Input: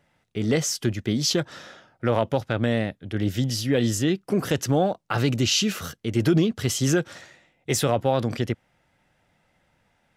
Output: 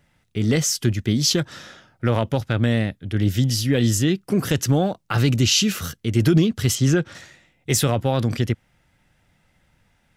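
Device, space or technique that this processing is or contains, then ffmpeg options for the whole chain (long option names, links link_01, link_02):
smiley-face EQ: -filter_complex "[0:a]lowshelf=frequency=100:gain=8.5,equalizer=frequency=640:width_type=o:width=1.6:gain=-5,highshelf=frequency=7900:gain=4.5,asettb=1/sr,asplit=3[link_01][link_02][link_03];[link_01]atrim=end=6.754[link_04];[link_02]atrim=start=6.75:end=7.15,asetpts=PTS-STARTPTS,afade=type=in:duration=0.004:curve=qsin,afade=type=out:start_time=0.396:duration=0.004:curve=qsin,aemphasis=mode=reproduction:type=50fm[link_05];[link_03]atrim=start=7.146[link_06];[link_04][link_05]acrossfade=duration=0.004:curve1=hsin:curve2=qsin[link_07];[link_07][link_06]acrossfade=duration=0.004:curve1=qsin:curve2=hsin,volume=3dB"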